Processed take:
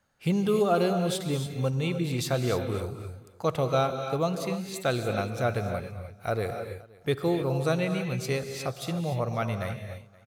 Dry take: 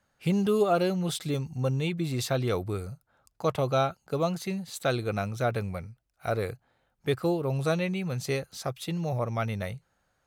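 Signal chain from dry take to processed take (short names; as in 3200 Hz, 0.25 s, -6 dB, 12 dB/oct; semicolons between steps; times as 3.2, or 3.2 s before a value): echo 0.523 s -24 dB; non-linear reverb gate 0.32 s rising, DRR 6 dB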